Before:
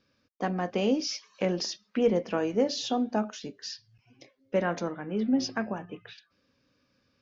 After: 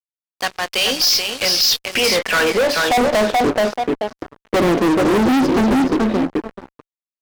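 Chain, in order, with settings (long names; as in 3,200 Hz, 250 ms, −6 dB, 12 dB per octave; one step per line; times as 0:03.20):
band-pass filter sweep 4,300 Hz → 330 Hz, 0:01.67–0:03.56
tape delay 432 ms, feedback 21%, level −6 dB, low-pass 3,900 Hz
fuzz pedal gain 48 dB, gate −57 dBFS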